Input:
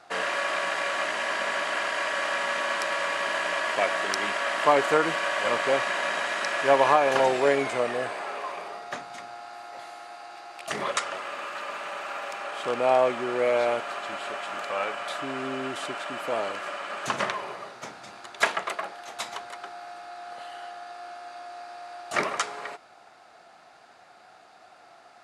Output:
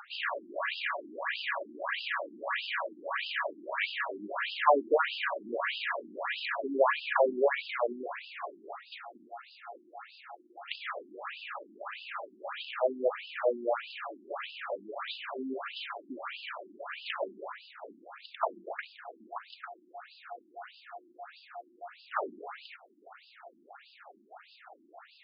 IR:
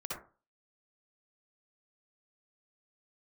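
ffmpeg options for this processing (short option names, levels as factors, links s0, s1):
-af "acompressor=mode=upward:threshold=0.0126:ratio=2.5,afftfilt=real='re*between(b*sr/1024,250*pow(3700/250,0.5+0.5*sin(2*PI*1.6*pts/sr))/1.41,250*pow(3700/250,0.5+0.5*sin(2*PI*1.6*pts/sr))*1.41)':imag='im*between(b*sr/1024,250*pow(3700/250,0.5+0.5*sin(2*PI*1.6*pts/sr))/1.41,250*pow(3700/250,0.5+0.5*sin(2*PI*1.6*pts/sr))*1.41)':win_size=1024:overlap=0.75"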